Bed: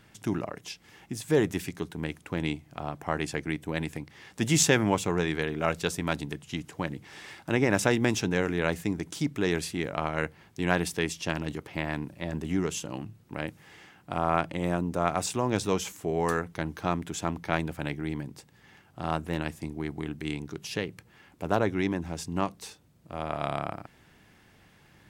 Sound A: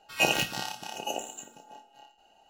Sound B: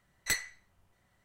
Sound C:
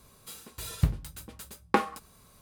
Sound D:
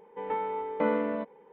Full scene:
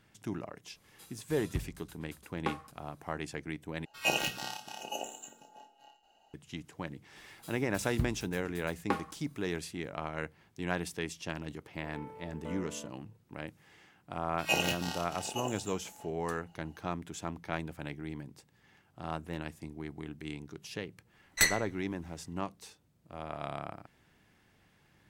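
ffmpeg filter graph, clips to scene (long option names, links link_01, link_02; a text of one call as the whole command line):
ffmpeg -i bed.wav -i cue0.wav -i cue1.wav -i cue2.wav -i cue3.wav -filter_complex "[3:a]asplit=2[link_01][link_02];[1:a]asplit=2[link_03][link_04];[0:a]volume=-8dB[link_05];[link_01]aresample=32000,aresample=44100[link_06];[link_03]bandreject=frequency=60:width_type=h:width=6,bandreject=frequency=120:width_type=h:width=6,bandreject=frequency=180:width_type=h:width=6,bandreject=frequency=240:width_type=h:width=6,bandreject=frequency=300:width_type=h:width=6,bandreject=frequency=360:width_type=h:width=6,bandreject=frequency=420:width_type=h:width=6,bandreject=frequency=480:width_type=h:width=6[link_07];[4:a]equalizer=frequency=890:width_type=o:width=0.77:gain=-2.5[link_08];[2:a]dynaudnorm=framelen=180:gausssize=3:maxgain=11dB[link_09];[link_05]asplit=2[link_10][link_11];[link_10]atrim=end=3.854[link_12];[link_07]atrim=end=2.49,asetpts=PTS-STARTPTS,volume=-5dB[link_13];[link_11]atrim=start=6.336[link_14];[link_06]atrim=end=2.41,asetpts=PTS-STARTPTS,volume=-11dB,afade=type=in:duration=0.004:curve=hsin,afade=type=out:start_time=2.406:duration=0.004:curve=hsin,adelay=720[link_15];[link_02]atrim=end=2.41,asetpts=PTS-STARTPTS,volume=-8.5dB,afade=type=in:duration=0.004:curve=hsin,afade=type=out:start_time=2.406:duration=0.004:curve=hsin,adelay=7160[link_16];[link_08]atrim=end=1.52,asetpts=PTS-STARTPTS,volume=-15.5dB,afade=type=in:duration=0.004:curve=hsin,afade=type=out:start_time=1.516:duration=0.004:curve=hsin,adelay=11650[link_17];[link_04]atrim=end=2.49,asetpts=PTS-STARTPTS,volume=-5dB,afade=type=in:duration=0.004:curve=hsin,afade=type=out:start_time=2.486:duration=0.004:curve=hsin,adelay=14290[link_18];[link_09]atrim=end=1.24,asetpts=PTS-STARTPTS,volume=-3.5dB,afade=type=in:duration=0.004:curve=hsin,afade=type=out:start_time=1.236:duration=0.004:curve=hsin,adelay=21110[link_19];[link_12][link_13]acrossfade=duration=0.004:curve1=hsin:curve2=hsin[link_20];[link_20][link_14]acrossfade=duration=0.004:curve1=hsin:curve2=hsin[link_21];[link_21][link_15][link_16][link_17][link_18][link_19]amix=inputs=6:normalize=0" out.wav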